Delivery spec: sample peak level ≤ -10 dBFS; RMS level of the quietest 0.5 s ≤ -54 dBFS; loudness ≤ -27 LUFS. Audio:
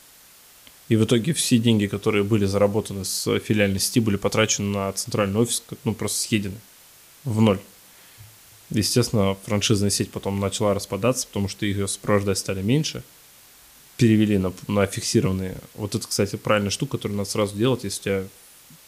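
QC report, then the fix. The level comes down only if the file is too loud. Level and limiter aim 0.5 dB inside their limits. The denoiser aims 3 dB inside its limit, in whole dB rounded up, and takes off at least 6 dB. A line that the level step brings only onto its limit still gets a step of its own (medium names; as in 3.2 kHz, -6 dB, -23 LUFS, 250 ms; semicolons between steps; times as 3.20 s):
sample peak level -6.5 dBFS: fail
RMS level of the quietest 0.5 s -50 dBFS: fail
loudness -22.5 LUFS: fail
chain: trim -5 dB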